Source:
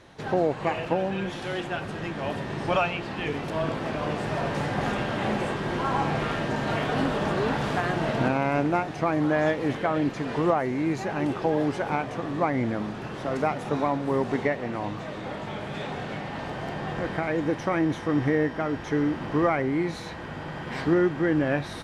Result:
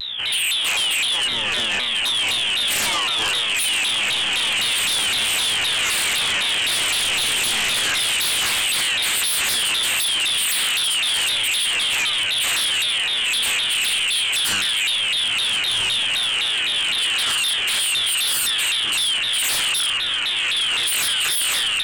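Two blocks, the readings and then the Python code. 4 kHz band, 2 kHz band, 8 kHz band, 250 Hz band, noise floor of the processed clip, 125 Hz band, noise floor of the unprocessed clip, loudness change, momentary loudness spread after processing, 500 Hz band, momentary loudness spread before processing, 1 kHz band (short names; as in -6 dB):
+26.0 dB, +11.5 dB, +29.0 dB, -16.5 dB, -22 dBFS, -14.0 dB, -37 dBFS, +9.5 dB, 1 LU, -12.5 dB, 9 LU, -3.0 dB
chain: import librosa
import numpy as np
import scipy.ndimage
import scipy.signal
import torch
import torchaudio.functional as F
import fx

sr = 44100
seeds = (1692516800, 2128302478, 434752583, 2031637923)

p1 = scipy.signal.sosfilt(scipy.signal.butter(2, 52.0, 'highpass', fs=sr, output='sos'), x)
p2 = fx.add_hum(p1, sr, base_hz=60, snr_db=11)
p3 = p2 + fx.echo_diffused(p2, sr, ms=1044, feedback_pct=78, wet_db=-10.5, dry=0)
p4 = fx.freq_invert(p3, sr, carrier_hz=3500)
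p5 = fx.comb_fb(p4, sr, f0_hz=110.0, decay_s=0.89, harmonics='all', damping=0.0, mix_pct=90)
p6 = fx.fold_sine(p5, sr, drive_db=16, ceiling_db=-22.5)
p7 = fx.vibrato_shape(p6, sr, shape='saw_down', rate_hz=3.9, depth_cents=250.0)
y = p7 * 10.0 ** (5.0 / 20.0)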